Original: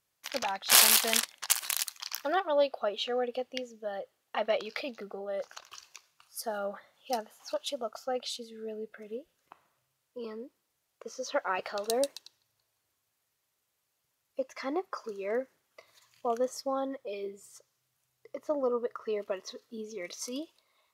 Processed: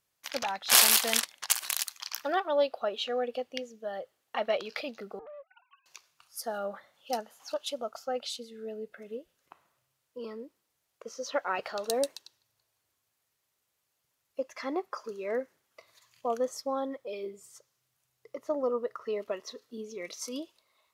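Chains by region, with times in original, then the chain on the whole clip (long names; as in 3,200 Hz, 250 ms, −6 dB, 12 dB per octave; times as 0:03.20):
0:05.19–0:05.86: three sine waves on the formant tracks + downward compressor 8 to 1, threshold −44 dBFS + highs frequency-modulated by the lows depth 0.77 ms
whole clip: no processing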